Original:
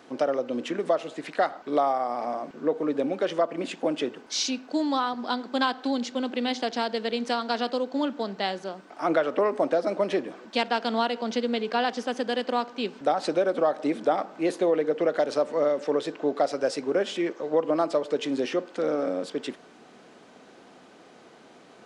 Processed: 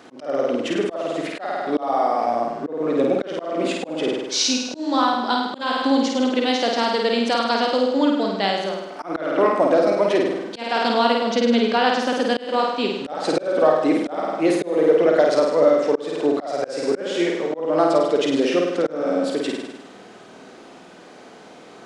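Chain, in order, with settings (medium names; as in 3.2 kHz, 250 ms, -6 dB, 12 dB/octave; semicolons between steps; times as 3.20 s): flutter echo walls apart 8.8 m, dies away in 0.95 s; slow attack 264 ms; trim +5.5 dB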